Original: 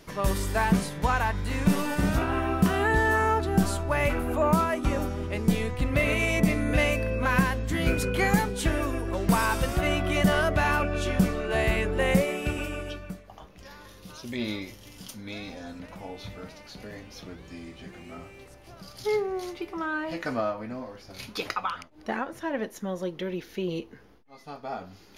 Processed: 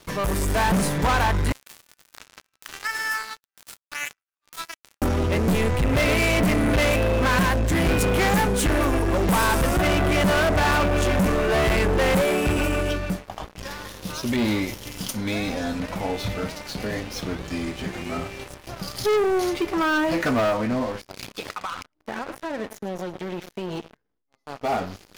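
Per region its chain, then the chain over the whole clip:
0:01.52–0:05.02: inverse Chebyshev high-pass filter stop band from 320 Hz, stop band 70 dB + power curve on the samples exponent 3
0:21.01–0:24.61: single-tap delay 111 ms −16 dB + downward compressor 10 to 1, threshold −38 dBFS + saturating transformer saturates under 820 Hz
whole clip: dynamic equaliser 3,800 Hz, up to −6 dB, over −46 dBFS, Q 1.1; leveller curve on the samples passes 5; automatic gain control gain up to 4 dB; level −9 dB

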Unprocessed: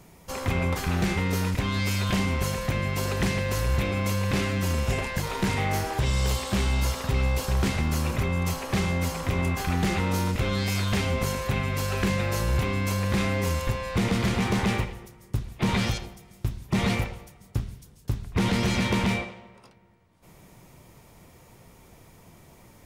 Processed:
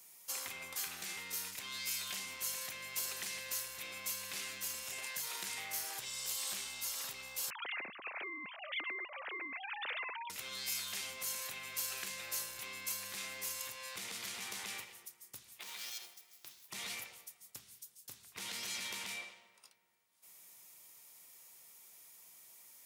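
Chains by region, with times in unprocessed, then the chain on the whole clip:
0:07.50–0:10.30: three sine waves on the formant tracks + low-shelf EQ 200 Hz +11.5 dB
0:15.60–0:16.70: running median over 5 samples + bass and treble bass −12 dB, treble +4 dB + downward compressor 10 to 1, threshold −34 dBFS
whole clip: downward compressor, threshold −26 dBFS; high-pass filter 71 Hz; first difference; level +1.5 dB

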